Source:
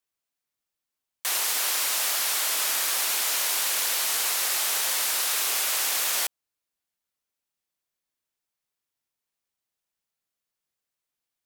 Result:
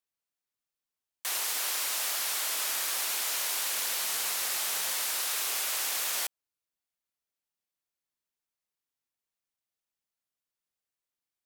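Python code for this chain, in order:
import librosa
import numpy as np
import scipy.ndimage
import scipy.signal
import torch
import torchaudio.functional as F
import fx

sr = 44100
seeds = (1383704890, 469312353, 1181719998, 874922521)

y = fx.peak_eq(x, sr, hz=160.0, db=8.5, octaves=0.68, at=(3.73, 4.93))
y = F.gain(torch.from_numpy(y), -5.5).numpy()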